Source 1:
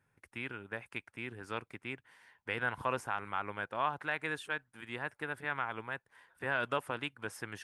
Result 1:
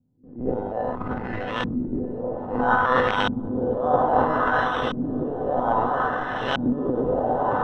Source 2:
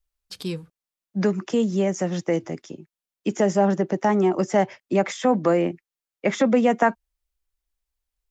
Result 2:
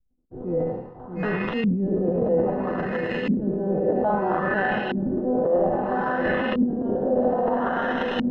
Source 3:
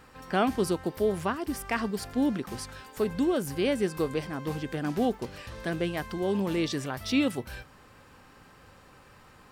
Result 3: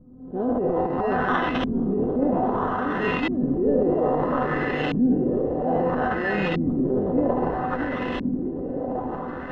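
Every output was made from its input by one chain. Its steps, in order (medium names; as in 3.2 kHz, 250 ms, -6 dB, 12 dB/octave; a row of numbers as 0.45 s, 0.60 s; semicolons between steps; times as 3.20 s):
spectral sustain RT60 0.75 s; dynamic bell 970 Hz, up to +4 dB, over -31 dBFS, Q 0.95; in parallel at -9.5 dB: companded quantiser 4-bit; on the sum: echo that smears into a reverb 922 ms, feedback 67%, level -10 dB; sample-and-hold 19×; treble shelf 8.9 kHz -9.5 dB; feedback comb 250 Hz, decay 0.27 s, harmonics all, mix 80%; transient shaper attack -9 dB, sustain +12 dB; low-pass that closes with the level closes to 2.8 kHz, closed at -23 dBFS; compression 6:1, threshold -32 dBFS; on a send: echo whose repeats swap between lows and highs 635 ms, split 850 Hz, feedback 62%, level -4.5 dB; on the sum: LFO low-pass saw up 0.61 Hz 210–3000 Hz; normalise loudness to -24 LUFS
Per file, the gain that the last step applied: +16.0 dB, +8.0 dB, +10.0 dB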